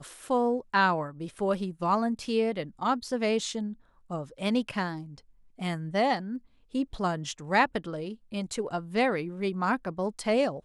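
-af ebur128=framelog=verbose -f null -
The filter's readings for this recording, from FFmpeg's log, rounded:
Integrated loudness:
  I:         -29.4 LUFS
  Threshold: -39.7 LUFS
Loudness range:
  LRA:         3.5 LU
  Threshold: -50.2 LUFS
  LRA low:   -31.9 LUFS
  LRA high:  -28.4 LUFS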